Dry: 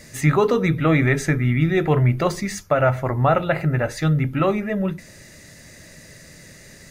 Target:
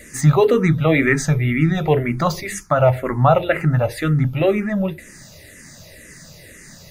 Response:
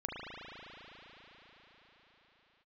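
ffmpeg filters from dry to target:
-filter_complex "[0:a]highshelf=f=12k:g=5.5,asplit=2[a][b];[b]afreqshift=-2[c];[a][c]amix=inputs=2:normalize=1,volume=5dB"

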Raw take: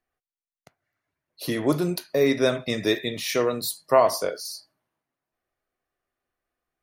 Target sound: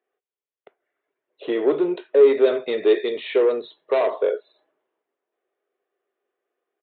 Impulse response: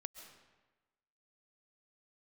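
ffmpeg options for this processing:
-af "aresample=8000,asoftclip=type=tanh:threshold=-20.5dB,aresample=44100,highpass=f=410:t=q:w=4.9"

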